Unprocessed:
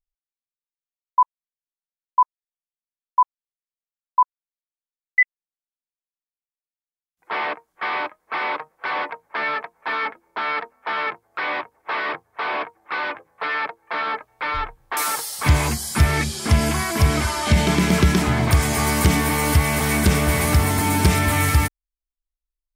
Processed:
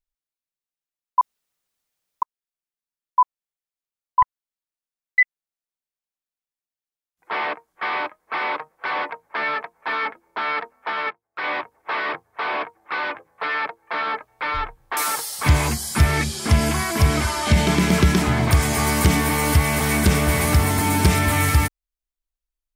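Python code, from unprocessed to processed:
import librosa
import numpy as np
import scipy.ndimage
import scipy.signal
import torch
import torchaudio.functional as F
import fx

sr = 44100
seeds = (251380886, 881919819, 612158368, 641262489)

y = fx.doppler_dist(x, sr, depth_ms=0.29, at=(4.22, 5.2))
y = fx.upward_expand(y, sr, threshold_db=-36.0, expansion=2.5, at=(10.9, 11.44))
y = fx.edit(y, sr, fx.room_tone_fill(start_s=1.21, length_s=1.01), tone=tone)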